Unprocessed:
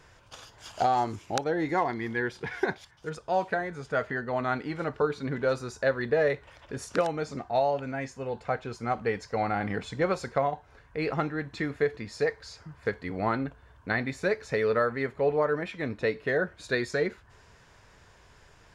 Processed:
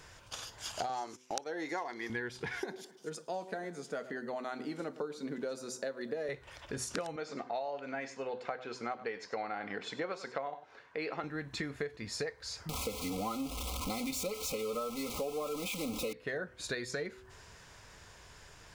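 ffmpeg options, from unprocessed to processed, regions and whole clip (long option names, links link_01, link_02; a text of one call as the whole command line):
ffmpeg -i in.wav -filter_complex "[0:a]asettb=1/sr,asplit=3[link_01][link_02][link_03];[link_01]atrim=end=0.894[link_04];[link_02]atrim=start=0.89:end=2.1,asetpts=PTS-STARTPTS,afade=type=in:duration=0.004:curve=qsin,afade=type=out:start_time=1.206:duration=0.004:curve=qsin,highpass=340,equalizer=frequency=5800:width_type=o:width=0.38:gain=7.5,agate=range=-15dB:threshold=-45dB:ratio=16:release=100:detection=peak[link_05];[link_03]atrim=start=2.096[link_06];[link_04][link_05]acrossfade=duration=0.004:curve1=hsin:curve2=qsin[link_07];[link_07][link_06]acrossfade=duration=0.004:curve1=qsin:curve2=hsin,asettb=1/sr,asplit=3[link_08][link_09][link_10];[link_08]atrim=end=2.624[link_11];[link_09]atrim=start=2.62:end=6.29,asetpts=PTS-STARTPTS,afade=type=in:duration=0.004:curve=qsin,afade=type=out:start_time=3.666:duration=0.004:curve=qsin,highpass=frequency=200:width=0.5412,highpass=frequency=200:width=1.3066,equalizer=frequency=1600:width_type=o:width=2.9:gain=-10,asplit=2[link_12][link_13];[link_13]adelay=107,lowpass=frequency=1900:poles=1,volume=-16.5dB,asplit=2[link_14][link_15];[link_15]adelay=107,lowpass=frequency=1900:poles=1,volume=0.4,asplit=2[link_16][link_17];[link_17]adelay=107,lowpass=frequency=1900:poles=1,volume=0.4[link_18];[link_12][link_14][link_16][link_18]amix=inputs=4:normalize=0,atrim=end_sample=161847[link_19];[link_10]atrim=start=6.286[link_20];[link_11][link_19]acrossfade=duration=0.004:curve1=hsin:curve2=qsin[link_21];[link_21][link_20]acrossfade=duration=0.004:curve1=qsin:curve2=hsin,asettb=1/sr,asplit=3[link_22][link_23][link_24];[link_22]atrim=end=7.164[link_25];[link_23]atrim=start=7.16:end=11.24,asetpts=PTS-STARTPTS,afade=type=in:duration=0.004:curve=qsin,afade=type=out:start_time=4.076:duration=0.004:curve=qsin,highpass=290,lowpass=4700,aecho=1:1:98:0.141,atrim=end_sample=179928[link_26];[link_24]atrim=start=11.236[link_27];[link_25][link_26]acrossfade=duration=0.004:curve1=hsin:curve2=qsin[link_28];[link_28][link_27]acrossfade=duration=0.004:curve1=qsin:curve2=hsin,asettb=1/sr,asplit=3[link_29][link_30][link_31];[link_29]atrim=end=12.694[link_32];[link_30]atrim=start=12.69:end=16.13,asetpts=PTS-STARTPTS,afade=type=in:duration=0.004:curve=qsin,afade=type=out:start_time=3.436:duration=0.004:curve=qsin,aeval=exprs='val(0)+0.5*0.0355*sgn(val(0))':channel_layout=same,asuperstop=centerf=1700:order=12:qfactor=2.2,aecho=1:1:3.9:0.75,atrim=end_sample=151704[link_33];[link_31]atrim=start=16.126[link_34];[link_32][link_33]acrossfade=duration=0.004:curve1=hsin:curve2=qsin[link_35];[link_35][link_34]acrossfade=duration=0.004:curve1=qsin:curve2=hsin,highshelf=frequency=3600:gain=8.5,bandreject=frequency=126.2:width_type=h:width=4,bandreject=frequency=252.4:width_type=h:width=4,bandreject=frequency=378.6:width_type=h:width=4,bandreject=frequency=504.8:width_type=h:width=4,acompressor=threshold=-35dB:ratio=6" out.wav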